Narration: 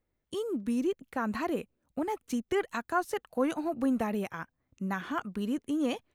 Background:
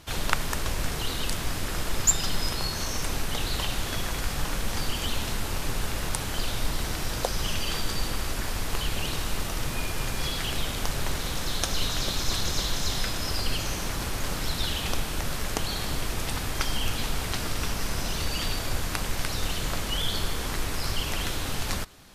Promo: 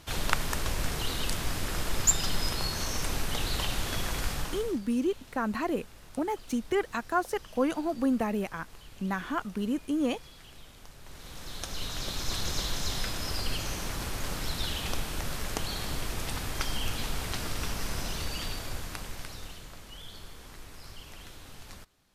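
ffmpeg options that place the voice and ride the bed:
ffmpeg -i stem1.wav -i stem2.wav -filter_complex "[0:a]adelay=4200,volume=1.5dB[link_01];[1:a]volume=15.5dB,afade=type=out:start_time=4.27:duration=0.52:silence=0.105925,afade=type=in:start_time=11.02:duration=1.48:silence=0.133352,afade=type=out:start_time=17.97:duration=1.72:silence=0.211349[link_02];[link_01][link_02]amix=inputs=2:normalize=0" out.wav

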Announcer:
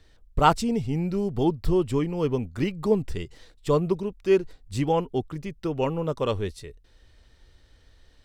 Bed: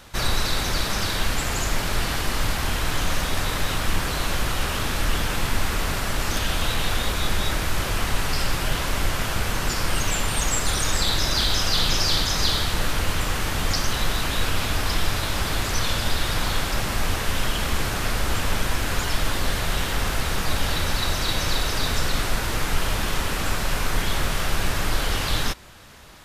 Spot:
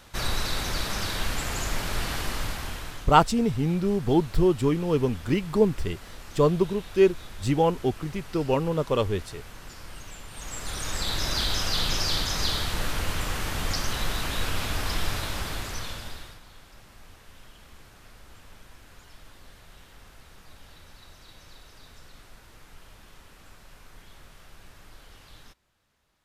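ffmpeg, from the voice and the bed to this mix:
ffmpeg -i stem1.wav -i stem2.wav -filter_complex "[0:a]adelay=2700,volume=1.5dB[link_01];[1:a]volume=9.5dB,afade=type=out:start_time=2.23:duration=0.86:silence=0.188365,afade=type=in:start_time=10.3:duration=1:silence=0.188365,afade=type=out:start_time=15.13:duration=1.27:silence=0.0841395[link_02];[link_01][link_02]amix=inputs=2:normalize=0" out.wav

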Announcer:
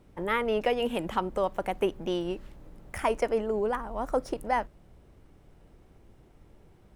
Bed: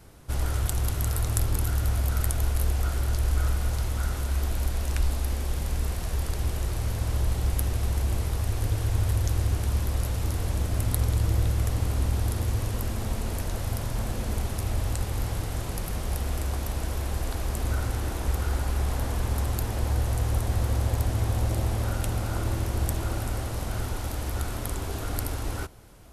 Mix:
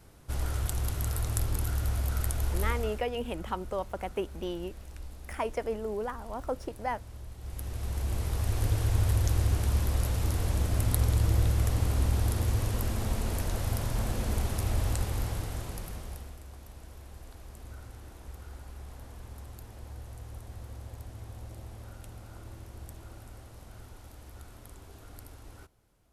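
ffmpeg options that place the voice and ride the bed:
ffmpeg -i stem1.wav -i stem2.wav -filter_complex "[0:a]adelay=2350,volume=-5.5dB[link_01];[1:a]volume=13dB,afade=type=out:start_time=2.68:duration=0.37:silence=0.199526,afade=type=in:start_time=7.38:duration=1.24:silence=0.133352,afade=type=out:start_time=14.91:duration=1.46:silence=0.141254[link_02];[link_01][link_02]amix=inputs=2:normalize=0" out.wav

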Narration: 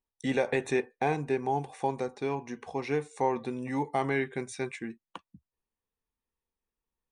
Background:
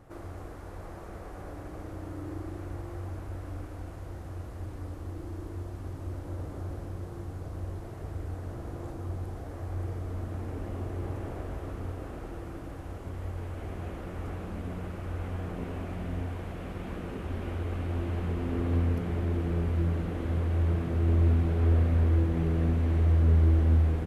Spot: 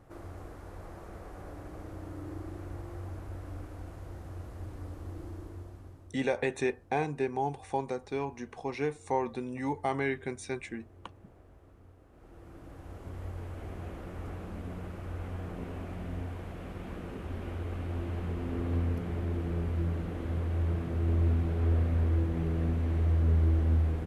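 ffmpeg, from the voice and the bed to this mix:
ffmpeg -i stem1.wav -i stem2.wav -filter_complex "[0:a]adelay=5900,volume=-2dB[link_01];[1:a]volume=13.5dB,afade=type=out:start_time=5.24:duration=0.92:silence=0.141254,afade=type=in:start_time=12.1:duration=1.07:silence=0.149624[link_02];[link_01][link_02]amix=inputs=2:normalize=0" out.wav

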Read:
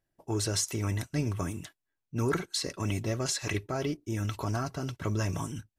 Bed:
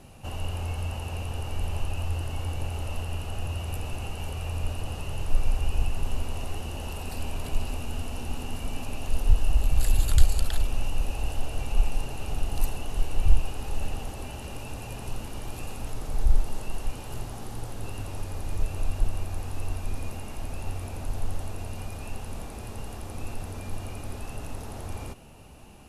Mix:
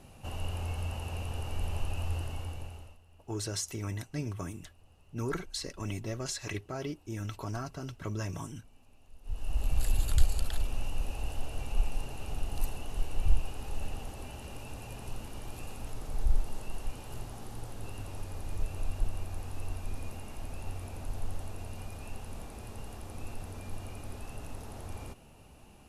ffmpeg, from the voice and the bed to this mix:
ffmpeg -i stem1.wav -i stem2.wav -filter_complex "[0:a]adelay=3000,volume=-5.5dB[link_01];[1:a]volume=18dB,afade=type=out:start_time=2.17:duration=0.81:silence=0.0630957,afade=type=in:start_time=9.22:duration=0.47:silence=0.0794328[link_02];[link_01][link_02]amix=inputs=2:normalize=0" out.wav

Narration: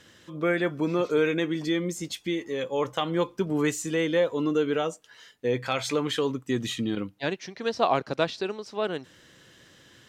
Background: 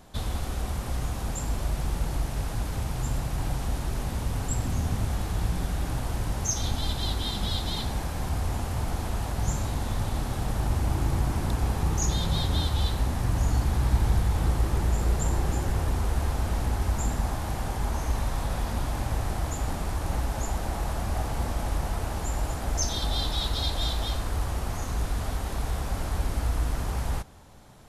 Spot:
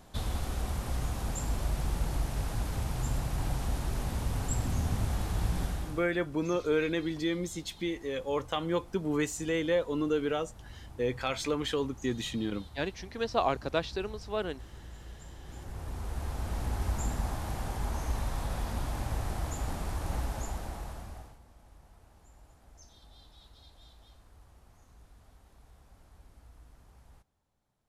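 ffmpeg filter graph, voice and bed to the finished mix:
ffmpeg -i stem1.wav -i stem2.wav -filter_complex "[0:a]adelay=5550,volume=-4.5dB[link_01];[1:a]volume=14.5dB,afade=type=out:start_time=5.63:duration=0.44:silence=0.105925,afade=type=in:start_time=15.41:duration=1.45:silence=0.133352,afade=type=out:start_time=20.23:duration=1.16:silence=0.0668344[link_02];[link_01][link_02]amix=inputs=2:normalize=0" out.wav

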